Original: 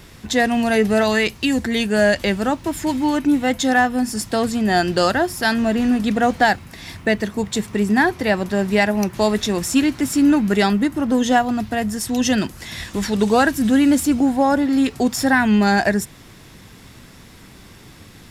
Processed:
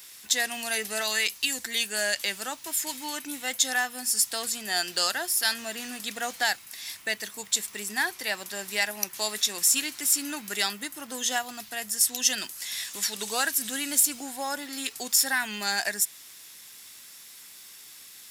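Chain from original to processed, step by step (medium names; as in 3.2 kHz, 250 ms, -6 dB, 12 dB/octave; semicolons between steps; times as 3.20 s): differentiator; trim +4.5 dB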